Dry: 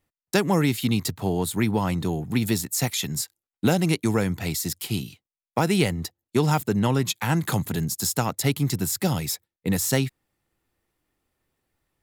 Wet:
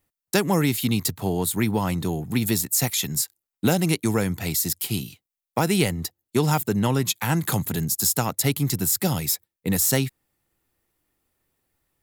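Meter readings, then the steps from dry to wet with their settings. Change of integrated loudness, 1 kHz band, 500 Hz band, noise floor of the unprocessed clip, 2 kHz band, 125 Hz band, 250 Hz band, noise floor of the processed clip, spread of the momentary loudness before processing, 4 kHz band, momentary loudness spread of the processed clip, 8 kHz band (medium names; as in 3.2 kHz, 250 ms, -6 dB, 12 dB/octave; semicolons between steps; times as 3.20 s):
+1.5 dB, 0.0 dB, 0.0 dB, under -85 dBFS, +0.5 dB, 0.0 dB, 0.0 dB, under -85 dBFS, 7 LU, +1.5 dB, 5 LU, +4.0 dB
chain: treble shelf 9.2 kHz +10 dB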